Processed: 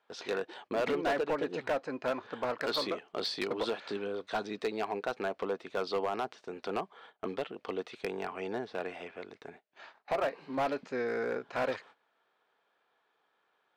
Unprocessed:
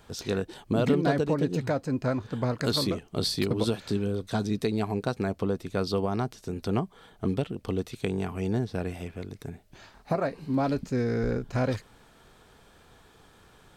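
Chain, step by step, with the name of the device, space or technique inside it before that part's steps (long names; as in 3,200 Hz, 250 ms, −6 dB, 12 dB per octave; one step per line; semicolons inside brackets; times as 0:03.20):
walkie-talkie (band-pass filter 570–2,900 Hz; hard clipping −28 dBFS, distortion −12 dB; noise gate −55 dBFS, range −17 dB)
level +2.5 dB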